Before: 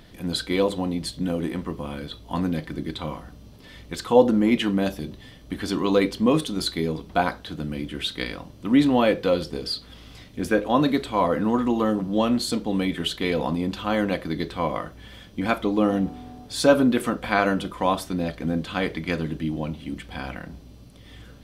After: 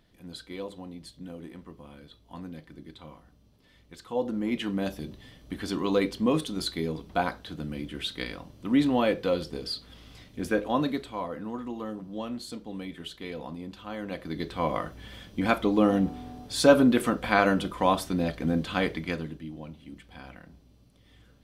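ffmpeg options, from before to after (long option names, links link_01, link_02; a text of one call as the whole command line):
ffmpeg -i in.wav -af "volume=7.5dB,afade=type=in:start_time=4.07:duration=0.95:silence=0.298538,afade=type=out:start_time=10.64:duration=0.63:silence=0.375837,afade=type=in:start_time=14.01:duration=0.8:silence=0.237137,afade=type=out:start_time=18.79:duration=0.62:silence=0.266073" out.wav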